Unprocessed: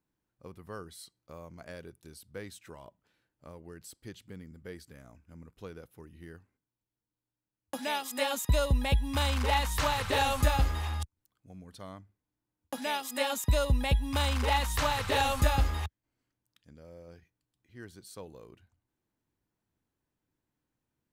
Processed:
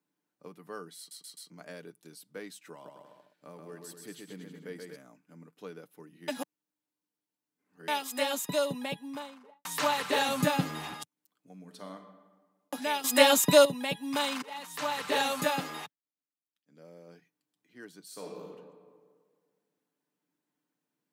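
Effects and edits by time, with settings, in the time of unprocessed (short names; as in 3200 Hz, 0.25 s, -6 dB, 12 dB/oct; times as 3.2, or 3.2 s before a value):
0.98 stutter in place 0.13 s, 4 plays
2.72–4.96 bouncing-ball echo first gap 0.13 s, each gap 0.8×, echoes 5
6.28–7.88 reverse
8.57–9.65 studio fade out
10.28–10.93 tone controls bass +13 dB, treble 0 dB
11.56–11.96 reverb throw, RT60 1.4 s, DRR 5.5 dB
13.04–13.65 gain +10 dB
14.42–15.22 fade in, from -23 dB
15.82–16.8 dip -20.5 dB, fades 0.14 s
18.04–18.45 reverb throw, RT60 1.8 s, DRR -2 dB
whole clip: steep high-pass 170 Hz 36 dB/oct; comb 6.8 ms, depth 40%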